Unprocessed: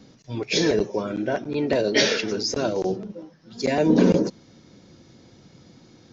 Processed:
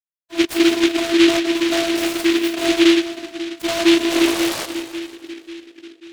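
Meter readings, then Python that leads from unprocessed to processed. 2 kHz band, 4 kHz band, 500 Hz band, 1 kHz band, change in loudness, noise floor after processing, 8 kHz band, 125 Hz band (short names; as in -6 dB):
+7.0 dB, +7.5 dB, +2.5 dB, +5.0 dB, +5.5 dB, -54 dBFS, n/a, under -10 dB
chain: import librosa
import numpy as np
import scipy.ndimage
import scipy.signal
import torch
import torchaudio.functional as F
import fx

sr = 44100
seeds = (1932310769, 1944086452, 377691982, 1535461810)

y = scipy.signal.sosfilt(scipy.signal.butter(2, 4000.0, 'lowpass', fs=sr, output='sos'), x)
y = fx.hum_notches(y, sr, base_hz=50, count=7)
y = fx.fuzz(y, sr, gain_db=32.0, gate_db=-38.0)
y = fx.peak_eq(y, sr, hz=190.0, db=8.5, octaves=2.7)
y = fx.noise_reduce_blind(y, sr, reduce_db=22)
y = 10.0 ** (-13.5 / 20.0) * np.tanh(y / 10.0 ** (-13.5 / 20.0))
y = fx.vocoder(y, sr, bands=16, carrier='saw', carrier_hz=336.0)
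y = fx.spec_paint(y, sr, seeds[0], shape='noise', start_s=4.11, length_s=0.55, low_hz=390.0, high_hz=2300.0, level_db=-27.0)
y = fx.echo_split(y, sr, split_hz=370.0, low_ms=540, high_ms=168, feedback_pct=52, wet_db=-9.5)
y = fx.noise_mod_delay(y, sr, seeds[1], noise_hz=2600.0, depth_ms=0.17)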